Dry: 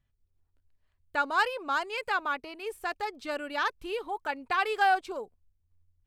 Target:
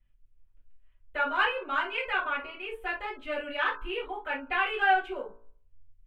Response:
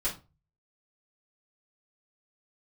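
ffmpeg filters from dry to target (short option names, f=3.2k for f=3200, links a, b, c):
-filter_complex "[0:a]highshelf=f=3.8k:t=q:w=3:g=-11,bandreject=f=56.42:t=h:w=4,bandreject=f=112.84:t=h:w=4,bandreject=f=169.26:t=h:w=4,bandreject=f=225.68:t=h:w=4,bandreject=f=282.1:t=h:w=4,bandreject=f=338.52:t=h:w=4,bandreject=f=394.94:t=h:w=4,bandreject=f=451.36:t=h:w=4,bandreject=f=507.78:t=h:w=4,bandreject=f=564.2:t=h:w=4,bandreject=f=620.62:t=h:w=4,bandreject=f=677.04:t=h:w=4,bandreject=f=733.46:t=h:w=4,bandreject=f=789.88:t=h:w=4,bandreject=f=846.3:t=h:w=4,bandreject=f=902.72:t=h:w=4,bandreject=f=959.14:t=h:w=4,bandreject=f=1.01556k:t=h:w=4,bandreject=f=1.07198k:t=h:w=4,bandreject=f=1.1284k:t=h:w=4,bandreject=f=1.18482k:t=h:w=4,bandreject=f=1.24124k:t=h:w=4,bandreject=f=1.29766k:t=h:w=4,bandreject=f=1.35408k:t=h:w=4,bandreject=f=1.4105k:t=h:w=4,bandreject=f=1.46692k:t=h:w=4,bandreject=f=1.52334k:t=h:w=4,bandreject=f=1.57976k:t=h:w=4,bandreject=f=1.63618k:t=h:w=4,bandreject=f=1.6926k:t=h:w=4[a];[1:a]atrim=start_sample=2205,atrim=end_sample=3528[b];[a][b]afir=irnorm=-1:irlink=0,volume=-6dB"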